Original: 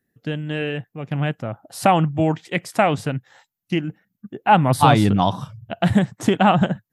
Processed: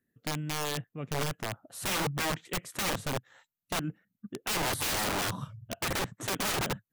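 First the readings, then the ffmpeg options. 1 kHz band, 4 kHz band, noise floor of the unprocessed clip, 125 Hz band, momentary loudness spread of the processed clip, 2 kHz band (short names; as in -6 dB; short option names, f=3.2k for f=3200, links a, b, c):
-16.5 dB, -3.0 dB, -81 dBFS, -16.0 dB, 10 LU, -7.5 dB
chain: -af "equalizer=f=250:t=o:w=0.33:g=3,equalizer=f=800:t=o:w=0.33:g=-7,equalizer=f=1.25k:t=o:w=0.33:g=3,equalizer=f=5k:t=o:w=0.33:g=-9,aeval=exprs='(mod(8.41*val(0)+1,2)-1)/8.41':c=same,volume=-7dB"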